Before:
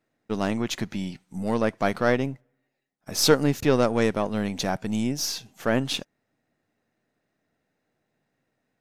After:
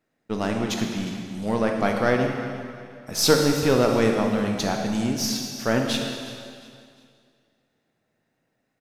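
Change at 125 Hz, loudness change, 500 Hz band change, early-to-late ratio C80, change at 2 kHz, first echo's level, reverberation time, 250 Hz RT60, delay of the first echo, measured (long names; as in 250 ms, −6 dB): +1.5 dB, +2.0 dB, +2.0 dB, 4.0 dB, +2.0 dB, −15.5 dB, 2.2 s, 2.2 s, 357 ms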